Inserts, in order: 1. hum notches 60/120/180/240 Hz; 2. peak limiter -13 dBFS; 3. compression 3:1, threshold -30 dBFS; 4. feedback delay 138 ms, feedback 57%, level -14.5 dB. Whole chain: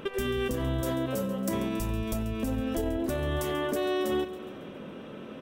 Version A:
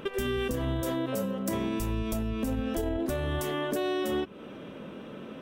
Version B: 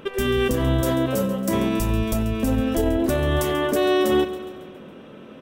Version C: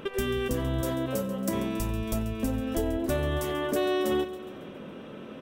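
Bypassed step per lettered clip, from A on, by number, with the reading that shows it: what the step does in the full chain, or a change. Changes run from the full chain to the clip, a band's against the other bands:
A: 4, echo-to-direct -13.0 dB to none; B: 3, mean gain reduction 6.5 dB; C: 2, mean gain reduction 2.0 dB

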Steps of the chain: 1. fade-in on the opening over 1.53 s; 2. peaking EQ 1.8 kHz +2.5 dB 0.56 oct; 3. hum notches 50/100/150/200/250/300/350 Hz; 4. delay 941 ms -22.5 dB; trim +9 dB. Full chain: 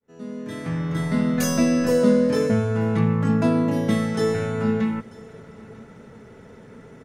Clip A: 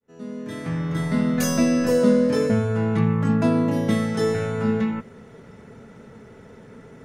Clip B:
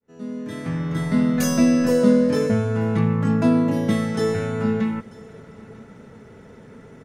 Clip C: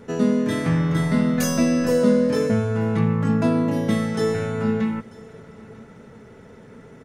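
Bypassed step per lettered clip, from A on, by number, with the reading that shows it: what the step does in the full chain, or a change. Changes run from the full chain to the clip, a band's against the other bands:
4, momentary loudness spread change -2 LU; 3, 250 Hz band +2.0 dB; 1, momentary loudness spread change -9 LU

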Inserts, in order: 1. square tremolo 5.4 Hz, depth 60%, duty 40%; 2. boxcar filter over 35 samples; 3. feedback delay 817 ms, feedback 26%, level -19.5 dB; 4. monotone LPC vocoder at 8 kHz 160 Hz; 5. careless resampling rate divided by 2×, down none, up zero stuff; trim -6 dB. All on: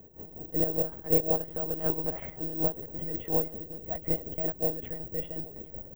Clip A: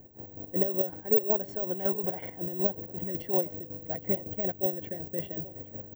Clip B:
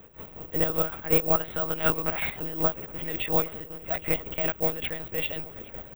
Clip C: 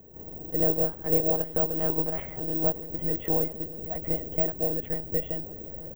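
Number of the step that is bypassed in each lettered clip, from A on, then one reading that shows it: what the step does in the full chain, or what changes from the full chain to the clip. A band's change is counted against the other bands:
4, 125 Hz band -3.0 dB; 2, 2 kHz band +15.0 dB; 1, momentary loudness spread change -2 LU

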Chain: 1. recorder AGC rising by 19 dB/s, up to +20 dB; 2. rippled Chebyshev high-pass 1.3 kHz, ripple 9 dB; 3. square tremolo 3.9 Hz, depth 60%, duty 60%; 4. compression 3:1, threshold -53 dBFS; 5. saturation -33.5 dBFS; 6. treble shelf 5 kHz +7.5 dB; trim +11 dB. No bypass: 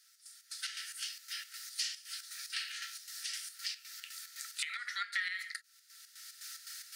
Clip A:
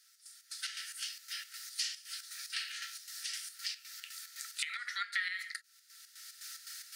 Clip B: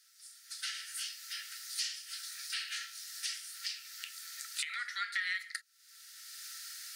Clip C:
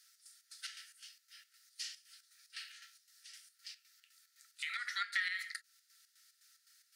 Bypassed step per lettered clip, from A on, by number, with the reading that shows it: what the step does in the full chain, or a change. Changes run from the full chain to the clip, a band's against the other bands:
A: 5, distortion -26 dB; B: 3, momentary loudness spread change -1 LU; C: 1, crest factor change +1.5 dB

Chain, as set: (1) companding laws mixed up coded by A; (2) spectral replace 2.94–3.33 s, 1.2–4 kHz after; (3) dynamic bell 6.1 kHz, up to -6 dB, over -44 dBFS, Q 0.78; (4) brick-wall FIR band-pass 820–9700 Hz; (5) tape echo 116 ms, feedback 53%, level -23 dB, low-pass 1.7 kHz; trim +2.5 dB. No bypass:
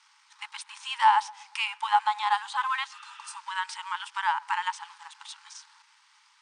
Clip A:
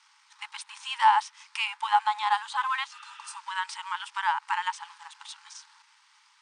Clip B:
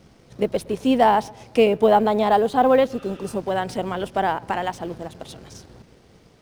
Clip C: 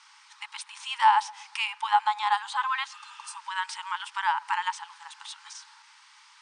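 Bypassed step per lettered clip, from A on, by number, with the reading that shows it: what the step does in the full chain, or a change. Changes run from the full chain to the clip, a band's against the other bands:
5, echo-to-direct -30.0 dB to none; 4, crest factor change -4.5 dB; 1, distortion -26 dB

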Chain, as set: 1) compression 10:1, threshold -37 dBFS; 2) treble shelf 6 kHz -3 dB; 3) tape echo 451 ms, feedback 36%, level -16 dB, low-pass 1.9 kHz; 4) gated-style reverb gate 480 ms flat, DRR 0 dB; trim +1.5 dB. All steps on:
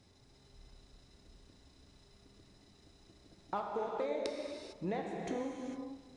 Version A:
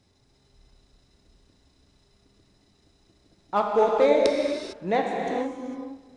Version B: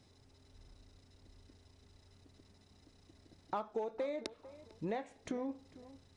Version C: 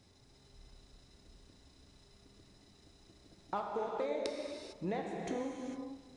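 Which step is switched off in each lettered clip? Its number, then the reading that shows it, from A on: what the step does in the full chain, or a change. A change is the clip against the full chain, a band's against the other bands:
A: 1, mean gain reduction 11.0 dB; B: 4, momentary loudness spread change +10 LU; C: 2, 8 kHz band +1.5 dB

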